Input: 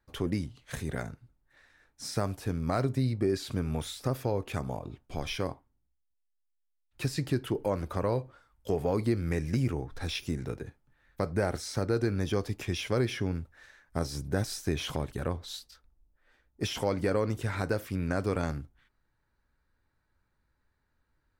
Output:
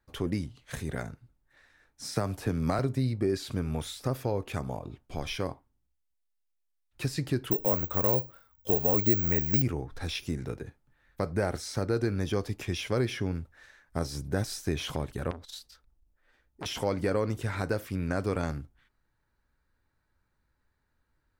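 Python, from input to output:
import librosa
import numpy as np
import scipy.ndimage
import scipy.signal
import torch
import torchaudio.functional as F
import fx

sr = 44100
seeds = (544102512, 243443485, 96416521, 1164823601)

y = fx.band_squash(x, sr, depth_pct=100, at=(2.16, 2.79))
y = fx.resample_bad(y, sr, factor=2, down='none', up='zero_stuff', at=(7.51, 9.62))
y = fx.transformer_sat(y, sr, knee_hz=1700.0, at=(15.31, 16.66))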